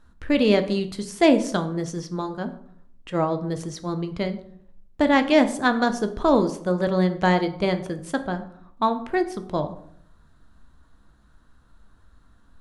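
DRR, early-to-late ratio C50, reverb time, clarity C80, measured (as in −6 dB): 8.0 dB, 13.0 dB, 0.65 s, 16.0 dB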